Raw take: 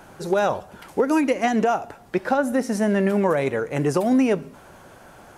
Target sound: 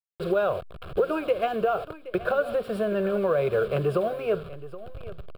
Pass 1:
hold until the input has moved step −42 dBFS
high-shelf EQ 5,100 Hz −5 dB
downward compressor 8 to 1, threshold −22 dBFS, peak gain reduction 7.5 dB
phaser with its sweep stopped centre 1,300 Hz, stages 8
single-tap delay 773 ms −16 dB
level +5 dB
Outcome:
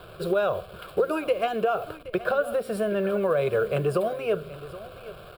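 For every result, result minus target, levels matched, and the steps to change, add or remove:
8,000 Hz band +7.5 dB; hold until the input has moved: distortion −9 dB
change: high-shelf EQ 5,100 Hz −16 dB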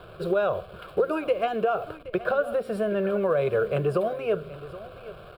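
hold until the input has moved: distortion −9 dB
change: hold until the input has moved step −33.5 dBFS

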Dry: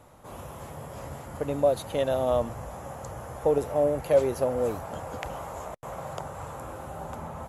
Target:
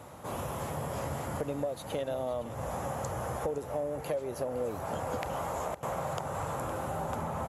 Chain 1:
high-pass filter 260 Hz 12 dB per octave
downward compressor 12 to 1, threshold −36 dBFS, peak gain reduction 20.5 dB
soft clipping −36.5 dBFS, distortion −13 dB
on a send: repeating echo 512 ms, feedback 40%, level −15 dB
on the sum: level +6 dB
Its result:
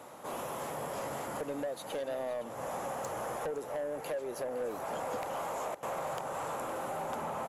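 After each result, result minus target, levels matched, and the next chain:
125 Hz band −10.0 dB; soft clipping: distortion +14 dB
high-pass filter 73 Hz 12 dB per octave
downward compressor 12 to 1, threshold −36 dBFS, peak gain reduction 21 dB
soft clipping −36.5 dBFS, distortion −14 dB
on a send: repeating echo 512 ms, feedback 40%, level −15 dB
on the sum: level +6 dB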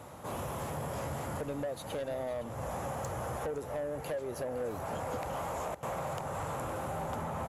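soft clipping: distortion +14 dB
high-pass filter 73 Hz 12 dB per octave
downward compressor 12 to 1, threshold −36 dBFS, peak gain reduction 21 dB
soft clipping −25.5 dBFS, distortion −28 dB
on a send: repeating echo 512 ms, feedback 40%, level −15 dB
on the sum: level +6 dB

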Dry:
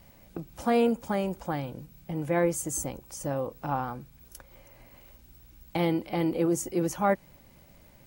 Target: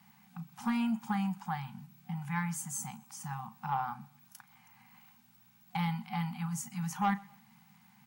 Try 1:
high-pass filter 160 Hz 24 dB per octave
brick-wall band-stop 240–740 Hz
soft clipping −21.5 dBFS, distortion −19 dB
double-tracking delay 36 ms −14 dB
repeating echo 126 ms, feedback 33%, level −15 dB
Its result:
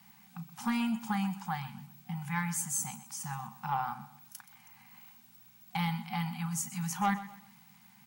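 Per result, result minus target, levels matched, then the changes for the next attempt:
echo-to-direct +9.5 dB; 4,000 Hz band +3.0 dB
change: repeating echo 126 ms, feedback 33%, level −24.5 dB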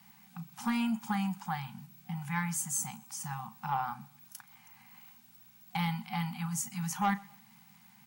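4,000 Hz band +3.0 dB
add after high-pass filter: high-shelf EQ 2,400 Hz −6.5 dB

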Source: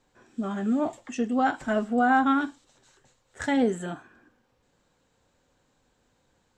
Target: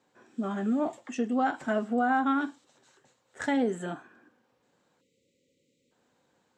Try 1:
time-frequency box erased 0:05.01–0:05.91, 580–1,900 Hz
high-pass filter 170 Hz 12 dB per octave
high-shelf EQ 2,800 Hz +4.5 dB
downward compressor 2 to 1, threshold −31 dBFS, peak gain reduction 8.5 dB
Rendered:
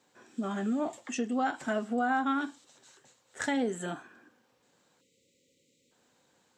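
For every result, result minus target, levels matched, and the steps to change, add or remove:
4,000 Hz band +5.0 dB; downward compressor: peak gain reduction +3.5 dB
change: high-shelf EQ 2,800 Hz −4 dB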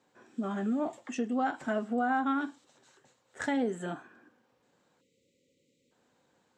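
downward compressor: peak gain reduction +3 dB
change: downward compressor 2 to 1, threshold −24.5 dBFS, peak gain reduction 4.5 dB

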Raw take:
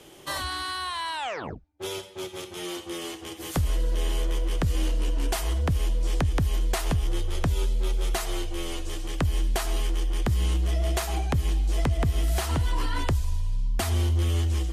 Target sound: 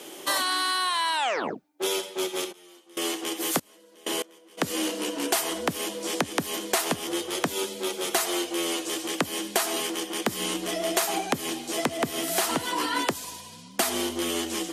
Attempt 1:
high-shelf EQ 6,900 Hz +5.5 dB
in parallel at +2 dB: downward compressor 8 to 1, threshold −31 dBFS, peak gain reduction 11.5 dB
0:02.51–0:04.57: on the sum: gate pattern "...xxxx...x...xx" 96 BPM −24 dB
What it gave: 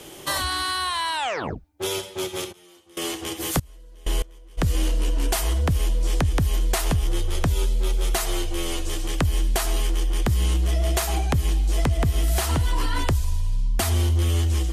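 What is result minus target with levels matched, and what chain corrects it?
250 Hz band −3.0 dB
high-pass filter 220 Hz 24 dB per octave
high-shelf EQ 6,900 Hz +5.5 dB
in parallel at +2 dB: downward compressor 8 to 1, threshold −31 dBFS, peak gain reduction 8.5 dB
0:02.51–0:04.57: on the sum: gate pattern "...xxxx...x...xx" 96 BPM −24 dB

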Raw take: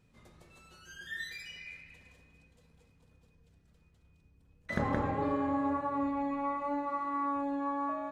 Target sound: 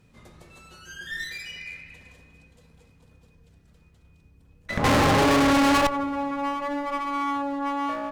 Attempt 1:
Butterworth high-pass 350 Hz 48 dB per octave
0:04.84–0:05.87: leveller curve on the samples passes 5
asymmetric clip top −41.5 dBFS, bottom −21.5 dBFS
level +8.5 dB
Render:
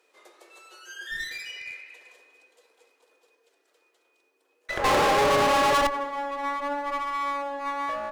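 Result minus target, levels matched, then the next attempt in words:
250 Hz band −10.0 dB
0:04.84–0:05.87: leveller curve on the samples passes 5
asymmetric clip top −41.5 dBFS, bottom −21.5 dBFS
level +8.5 dB

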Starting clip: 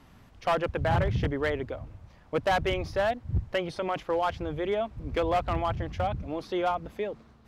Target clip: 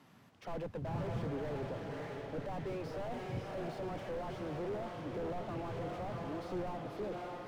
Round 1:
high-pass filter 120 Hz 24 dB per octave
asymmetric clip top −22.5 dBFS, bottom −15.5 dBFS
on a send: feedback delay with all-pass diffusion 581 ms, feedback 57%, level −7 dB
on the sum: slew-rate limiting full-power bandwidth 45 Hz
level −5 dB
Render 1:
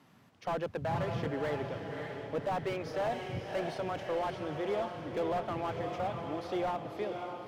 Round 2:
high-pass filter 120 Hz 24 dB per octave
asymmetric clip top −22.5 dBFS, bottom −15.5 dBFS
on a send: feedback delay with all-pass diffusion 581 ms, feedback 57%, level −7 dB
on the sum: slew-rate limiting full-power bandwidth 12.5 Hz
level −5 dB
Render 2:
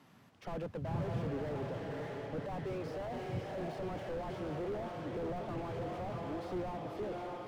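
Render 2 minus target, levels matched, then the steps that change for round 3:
asymmetric clip: distortion −10 dB
change: asymmetric clip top −32.5 dBFS, bottom −15.5 dBFS

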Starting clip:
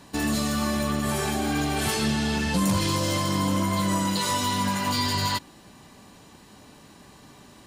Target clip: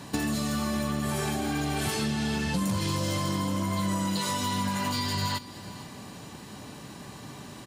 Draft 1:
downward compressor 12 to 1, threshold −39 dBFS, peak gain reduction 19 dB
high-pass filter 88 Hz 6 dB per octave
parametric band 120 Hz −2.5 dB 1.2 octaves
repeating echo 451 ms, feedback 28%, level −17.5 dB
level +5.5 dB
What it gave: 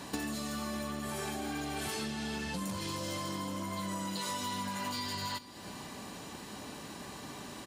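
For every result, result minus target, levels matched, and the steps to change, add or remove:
downward compressor: peak gain reduction +6.5 dB; 125 Hz band −3.5 dB
change: downward compressor 12 to 1, threshold −32 dBFS, peak gain reduction 13 dB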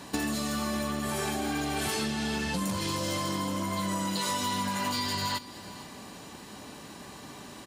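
125 Hz band −4.5 dB
change: parametric band 120 Hz +6.5 dB 1.2 octaves

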